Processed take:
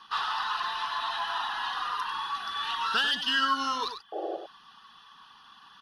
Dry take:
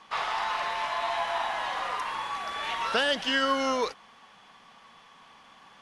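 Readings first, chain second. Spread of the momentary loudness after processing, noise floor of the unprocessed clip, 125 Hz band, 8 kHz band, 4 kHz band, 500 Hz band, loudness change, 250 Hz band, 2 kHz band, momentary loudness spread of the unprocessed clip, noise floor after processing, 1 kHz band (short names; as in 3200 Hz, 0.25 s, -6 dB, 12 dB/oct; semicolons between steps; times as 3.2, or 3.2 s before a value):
11 LU, -55 dBFS, n/a, -3.5 dB, +2.0 dB, -9.0 dB, -1.0 dB, -6.0 dB, -0.5 dB, 7 LU, -55 dBFS, -0.5 dB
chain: tilt shelf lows -5 dB, about 650 Hz; reverb removal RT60 0.58 s; fixed phaser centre 2200 Hz, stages 6; in parallel at -7 dB: soft clip -27.5 dBFS, distortion -10 dB; on the sum: painted sound noise, 4.12–4.37, 320–840 Hz -31 dBFS; on a send: echo 96 ms -8.5 dB; on the sum: gain -2.5 dB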